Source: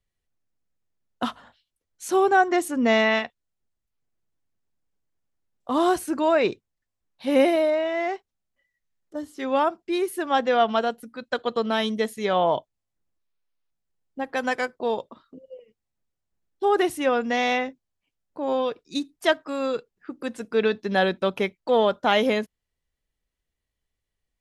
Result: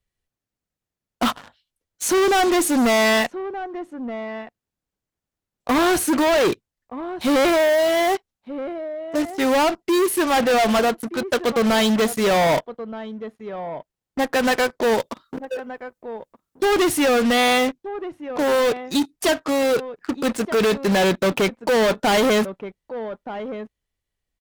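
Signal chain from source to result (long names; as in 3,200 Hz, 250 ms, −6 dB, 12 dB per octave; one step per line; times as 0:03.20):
leveller curve on the samples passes 3
0:14.99–0:16.65: high-shelf EQ 5,900 Hz +10 dB
slap from a distant wall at 210 metres, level −23 dB
harmonic generator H 5 −12 dB, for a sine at −17.5 dBFS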